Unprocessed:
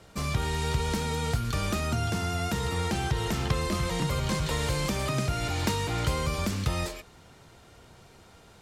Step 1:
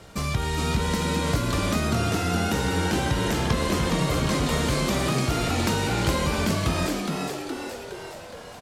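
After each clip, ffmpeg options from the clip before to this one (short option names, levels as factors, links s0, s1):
-filter_complex "[0:a]asplit=2[s0][s1];[s1]acompressor=threshold=0.0158:ratio=6,volume=1.06[s2];[s0][s2]amix=inputs=2:normalize=0,asplit=9[s3][s4][s5][s6][s7][s8][s9][s10][s11];[s4]adelay=416,afreqshift=100,volume=0.631[s12];[s5]adelay=832,afreqshift=200,volume=0.367[s13];[s6]adelay=1248,afreqshift=300,volume=0.211[s14];[s7]adelay=1664,afreqshift=400,volume=0.123[s15];[s8]adelay=2080,afreqshift=500,volume=0.0716[s16];[s9]adelay=2496,afreqshift=600,volume=0.0412[s17];[s10]adelay=2912,afreqshift=700,volume=0.024[s18];[s11]adelay=3328,afreqshift=800,volume=0.014[s19];[s3][s12][s13][s14][s15][s16][s17][s18][s19]amix=inputs=9:normalize=0"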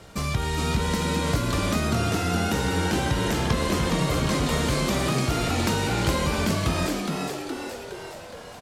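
-af anull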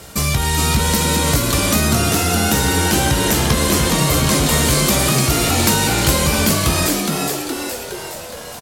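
-filter_complex "[0:a]acontrast=86,aemphasis=mode=production:type=50fm,asplit=2[s0][s1];[s1]adelay=14,volume=0.299[s2];[s0][s2]amix=inputs=2:normalize=0"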